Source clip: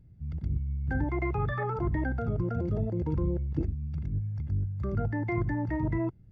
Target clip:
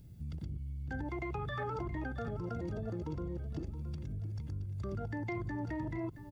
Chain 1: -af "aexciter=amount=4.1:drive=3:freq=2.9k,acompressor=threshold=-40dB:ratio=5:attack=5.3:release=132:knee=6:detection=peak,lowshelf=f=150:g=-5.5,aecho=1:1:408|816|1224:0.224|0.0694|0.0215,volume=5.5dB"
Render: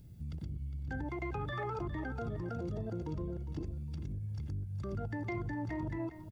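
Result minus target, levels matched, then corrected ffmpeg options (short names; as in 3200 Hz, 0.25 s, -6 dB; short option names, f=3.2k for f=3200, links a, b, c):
echo 0.264 s early
-af "aexciter=amount=4.1:drive=3:freq=2.9k,acompressor=threshold=-40dB:ratio=5:attack=5.3:release=132:knee=6:detection=peak,lowshelf=f=150:g=-5.5,aecho=1:1:672|1344|2016:0.224|0.0694|0.0215,volume=5.5dB"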